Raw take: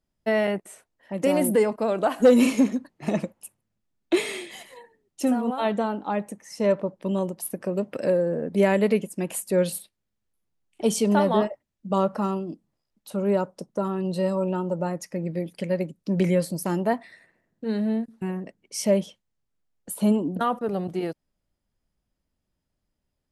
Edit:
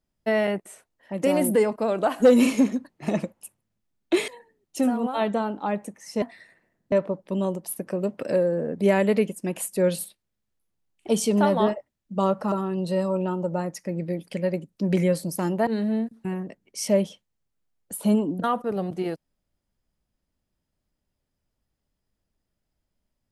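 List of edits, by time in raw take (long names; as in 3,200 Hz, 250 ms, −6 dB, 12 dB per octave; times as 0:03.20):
0:04.28–0:04.72: remove
0:12.26–0:13.79: remove
0:16.94–0:17.64: move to 0:06.66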